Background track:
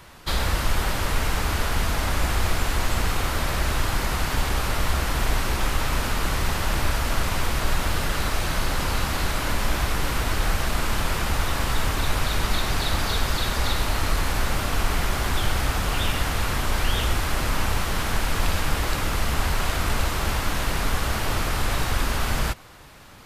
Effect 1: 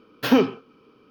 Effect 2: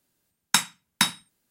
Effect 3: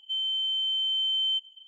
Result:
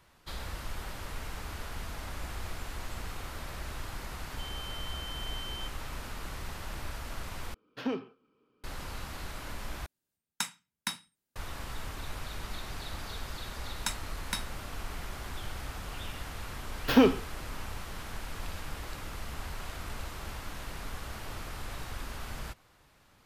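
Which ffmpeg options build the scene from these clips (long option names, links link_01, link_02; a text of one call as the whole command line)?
ffmpeg -i bed.wav -i cue0.wav -i cue1.wav -i cue2.wav -filter_complex "[1:a]asplit=2[link_01][link_02];[2:a]asplit=2[link_03][link_04];[0:a]volume=-16dB[link_05];[link_01]adynamicsmooth=sensitivity=2:basefreq=6100[link_06];[link_05]asplit=3[link_07][link_08][link_09];[link_07]atrim=end=7.544[link_10];[link_06]atrim=end=1.1,asetpts=PTS-STARTPTS,volume=-16dB[link_11];[link_08]atrim=start=8.636:end=9.864[link_12];[link_03]atrim=end=1.5,asetpts=PTS-STARTPTS,volume=-13dB[link_13];[link_09]atrim=start=11.356[link_14];[3:a]atrim=end=1.67,asetpts=PTS-STARTPTS,volume=-16.5dB,afade=type=in:duration=0.004:curve=hsin,afade=type=out:start_time=1.666:duration=0.004:curve=hsin,adelay=189189S[link_15];[link_04]atrim=end=1.5,asetpts=PTS-STARTPTS,volume=-13.5dB,afade=type=in:duration=0.004:curve=hsin,afade=type=out:start_time=1.496:duration=0.004:curve=hsin,adelay=587412S[link_16];[link_02]atrim=end=1.1,asetpts=PTS-STARTPTS,volume=-3.5dB,afade=type=in:duration=0.004:curve=hsin,afade=type=out:start_time=1.096:duration=0.004:curve=hsin,adelay=16650[link_17];[link_10][link_11]acrossfade=duration=0.004:curve1=hsin:curve2=hsin[link_18];[link_18][link_12]acrossfade=duration=0.004:curve1=hsin:curve2=hsin[link_19];[link_19][link_13]acrossfade=duration=0.004:curve1=hsin:curve2=hsin[link_20];[link_20][link_14]acrossfade=duration=0.004:curve1=hsin:curve2=hsin[link_21];[link_21][link_15][link_16][link_17]amix=inputs=4:normalize=0" out.wav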